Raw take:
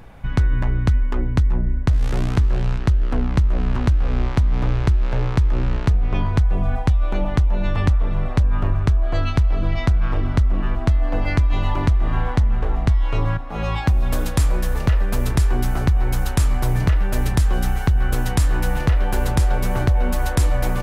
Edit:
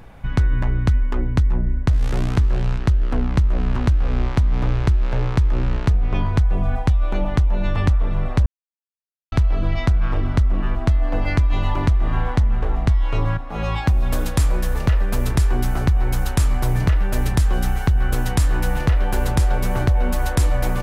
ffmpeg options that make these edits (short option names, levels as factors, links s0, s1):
-filter_complex "[0:a]asplit=3[s0][s1][s2];[s0]atrim=end=8.46,asetpts=PTS-STARTPTS,afade=t=out:st=8.456:d=0.004:c=hsin[s3];[s1]atrim=start=8.46:end=9.32,asetpts=PTS-STARTPTS,volume=0[s4];[s2]atrim=start=9.32,asetpts=PTS-STARTPTS,afade=t=in:d=0.004:c=hsin[s5];[s3][s4][s5]concat=n=3:v=0:a=1"